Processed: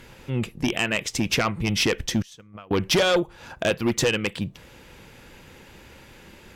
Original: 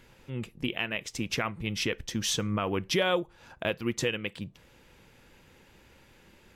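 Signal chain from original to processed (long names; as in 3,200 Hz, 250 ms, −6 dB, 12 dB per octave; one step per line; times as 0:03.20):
0:02.22–0:02.71: noise gate −24 dBFS, range −30 dB
harmonic generator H 5 −7 dB, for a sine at −13 dBFS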